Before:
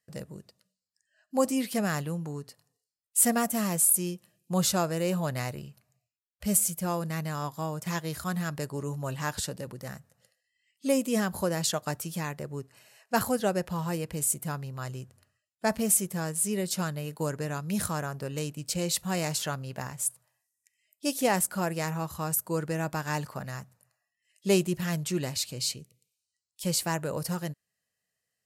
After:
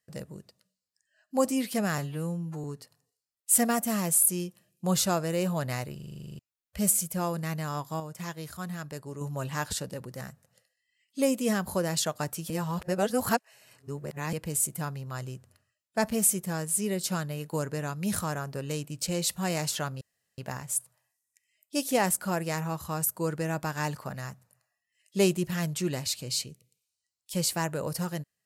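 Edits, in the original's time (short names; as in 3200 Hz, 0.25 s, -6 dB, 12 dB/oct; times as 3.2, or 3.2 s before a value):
1.98–2.31 stretch 2×
5.62 stutter in place 0.04 s, 11 plays
7.67–8.88 gain -5.5 dB
12.17–14 reverse
19.68 insert room tone 0.37 s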